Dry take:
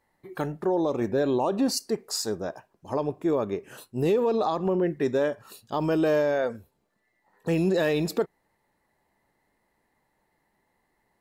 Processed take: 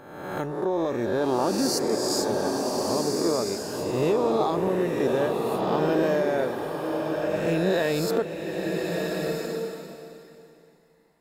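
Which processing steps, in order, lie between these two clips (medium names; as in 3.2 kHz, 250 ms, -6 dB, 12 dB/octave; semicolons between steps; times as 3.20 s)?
reverse spectral sustain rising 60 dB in 1.13 s; swelling reverb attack 1350 ms, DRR 2 dB; trim -2.5 dB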